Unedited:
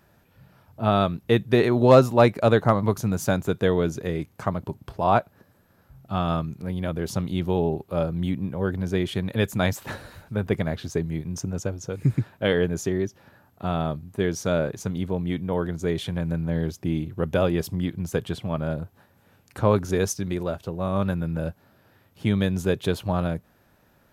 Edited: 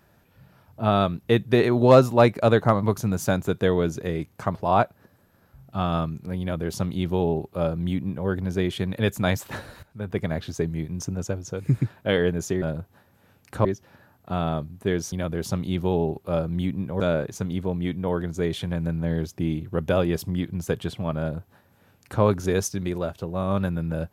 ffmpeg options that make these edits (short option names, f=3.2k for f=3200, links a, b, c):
-filter_complex "[0:a]asplit=7[a][b][c][d][e][f][g];[a]atrim=end=4.552[h];[b]atrim=start=4.908:end=10.19,asetpts=PTS-STARTPTS,afade=t=out:st=5.278:d=0.004:c=hsin:silence=0.188365[i];[c]atrim=start=10.19:end=12.982,asetpts=PTS-STARTPTS,afade=t=in:d=0.52:silence=0.188365[j];[d]atrim=start=18.648:end=19.682[k];[e]atrim=start=12.978:end=14.452[l];[f]atrim=start=6.758:end=8.642[m];[g]atrim=start=14.448[n];[i][j]concat=n=2:v=0:a=1[o];[h][o]acrossfade=d=0.004:c1=hsin:c2=hsin[p];[p][k]acrossfade=d=0.004:c1=hsin:c2=hsin[q];[q][l]acrossfade=d=0.004:c1=hsin:c2=hsin[r];[r][m]acrossfade=d=0.004:c1=hsin:c2=hsin[s];[s][n]acrossfade=d=0.004:c1=hsin:c2=hsin"